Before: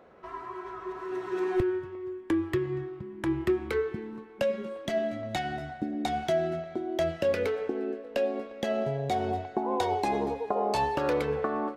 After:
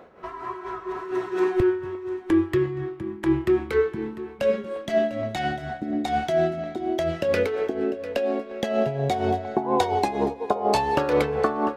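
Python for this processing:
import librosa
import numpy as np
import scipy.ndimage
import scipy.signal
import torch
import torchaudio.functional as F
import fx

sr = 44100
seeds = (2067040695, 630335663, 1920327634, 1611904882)

y = x * (1.0 - 0.6 / 2.0 + 0.6 / 2.0 * np.cos(2.0 * np.pi * 4.2 * (np.arange(len(x)) / sr)))
y = y + 10.0 ** (-15.5 / 20.0) * np.pad(y, (int(698 * sr / 1000.0), 0))[:len(y)]
y = fx.upward_expand(y, sr, threshold_db=-39.0, expansion=1.5, at=(9.99, 10.65))
y = F.gain(torch.from_numpy(y), 8.5).numpy()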